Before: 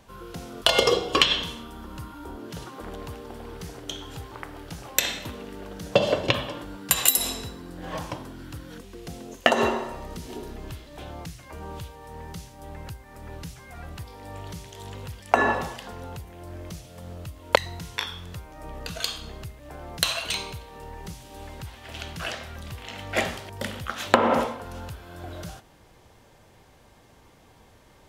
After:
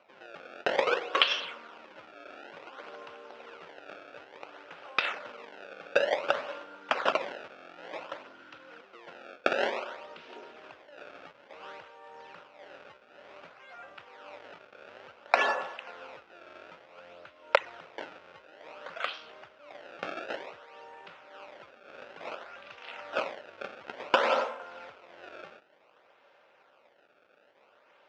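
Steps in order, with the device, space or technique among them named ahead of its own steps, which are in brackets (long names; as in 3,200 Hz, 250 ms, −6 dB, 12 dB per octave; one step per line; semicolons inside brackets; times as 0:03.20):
circuit-bent sampling toy (sample-and-hold swept by an LFO 25×, swing 160% 0.56 Hz; loudspeaker in its box 530–4,600 Hz, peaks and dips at 560 Hz +7 dB, 1,400 Hz +8 dB, 2,600 Hz +6 dB, 4,300 Hz −4 dB)
level −6 dB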